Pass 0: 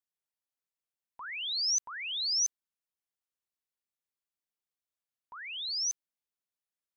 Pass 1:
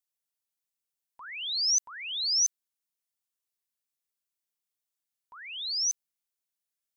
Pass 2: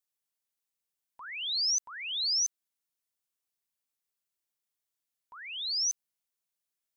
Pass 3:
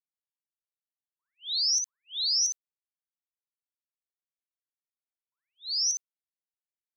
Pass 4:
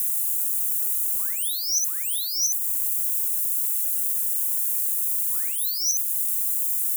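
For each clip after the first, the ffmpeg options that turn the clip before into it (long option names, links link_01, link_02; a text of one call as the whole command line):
ffmpeg -i in.wav -af "highshelf=frequency=3600:gain=10,volume=-3.5dB" out.wav
ffmpeg -i in.wav -af "acompressor=threshold=-26dB:ratio=6" out.wav
ffmpeg -i in.wav -filter_complex "[0:a]agate=range=-52dB:threshold=-34dB:ratio=16:detection=peak,asplit=2[link_01][link_02];[link_02]aecho=0:1:16|59:0.211|0.562[link_03];[link_01][link_03]amix=inputs=2:normalize=0,volume=1.5dB" out.wav
ffmpeg -i in.wav -af "aeval=exprs='val(0)+0.5*0.0133*sgn(val(0))':channel_layout=same,acompressor=threshold=-34dB:ratio=2,aexciter=amount=8.3:drive=9.4:freq=7000" out.wav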